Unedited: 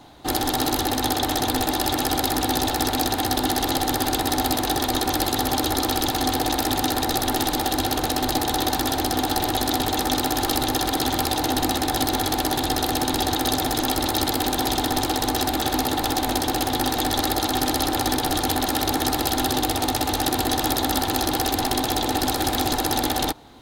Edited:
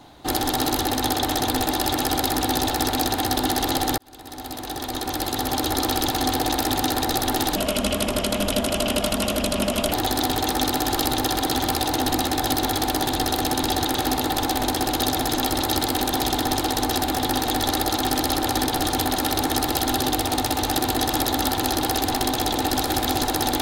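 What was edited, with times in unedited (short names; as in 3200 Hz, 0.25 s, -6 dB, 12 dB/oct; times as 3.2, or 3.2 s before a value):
3.98–5.84 fade in
7.56–9.43 speed 79%
15.61–16.66 move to 13.44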